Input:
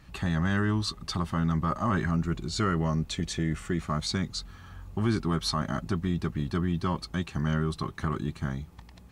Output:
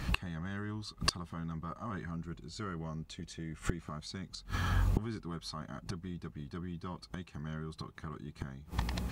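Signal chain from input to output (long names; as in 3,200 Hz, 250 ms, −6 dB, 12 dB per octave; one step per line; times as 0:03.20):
gate with flip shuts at −28 dBFS, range −28 dB
level +14.5 dB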